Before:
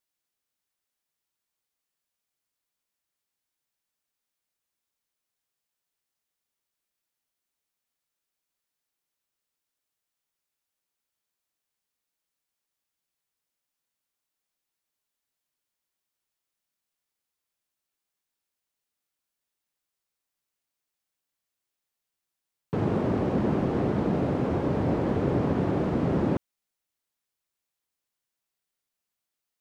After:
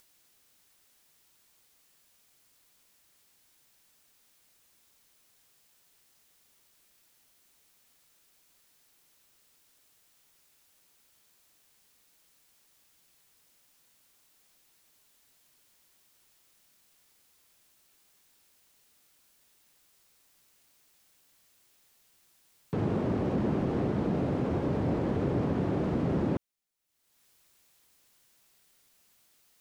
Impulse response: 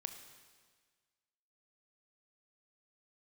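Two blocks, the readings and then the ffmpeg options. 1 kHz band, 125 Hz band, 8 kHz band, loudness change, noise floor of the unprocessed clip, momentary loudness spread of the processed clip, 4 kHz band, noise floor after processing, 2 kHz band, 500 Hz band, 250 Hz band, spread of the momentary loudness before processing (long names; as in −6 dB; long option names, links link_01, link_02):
−5.0 dB, −3.0 dB, can't be measured, −3.5 dB, below −85 dBFS, 2 LU, −2.5 dB, −67 dBFS, −4.0 dB, −4.0 dB, −3.0 dB, 2 LU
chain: -filter_complex "[0:a]equalizer=frequency=990:width_type=o:width=2.6:gain=-2.5,asplit=2[link_01][link_02];[link_02]alimiter=limit=-23.5dB:level=0:latency=1,volume=-1.5dB[link_03];[link_01][link_03]amix=inputs=2:normalize=0,acompressor=mode=upward:threshold=-42dB:ratio=2.5,volume=-6dB"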